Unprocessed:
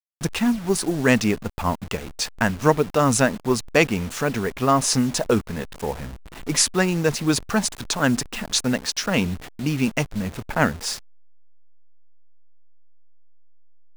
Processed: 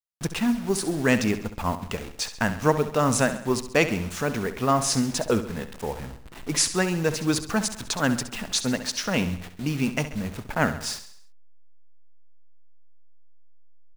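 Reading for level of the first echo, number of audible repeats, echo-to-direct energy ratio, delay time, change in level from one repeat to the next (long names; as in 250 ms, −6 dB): −12.0 dB, 4, −10.5 dB, 67 ms, −6.0 dB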